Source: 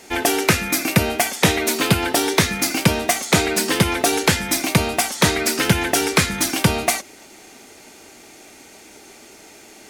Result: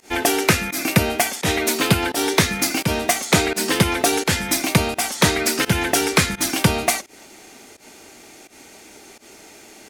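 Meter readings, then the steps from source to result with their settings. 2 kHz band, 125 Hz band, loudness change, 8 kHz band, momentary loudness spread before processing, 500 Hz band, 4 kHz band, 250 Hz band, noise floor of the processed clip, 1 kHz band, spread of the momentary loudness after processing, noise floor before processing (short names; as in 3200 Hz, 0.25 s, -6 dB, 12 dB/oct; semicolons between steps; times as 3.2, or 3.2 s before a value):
-0.5 dB, -0.5 dB, -0.5 dB, -0.5 dB, 2 LU, -0.5 dB, -0.5 dB, -0.5 dB, -46 dBFS, -0.5 dB, 3 LU, -45 dBFS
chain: pump 85 bpm, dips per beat 1, -21 dB, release 0.118 s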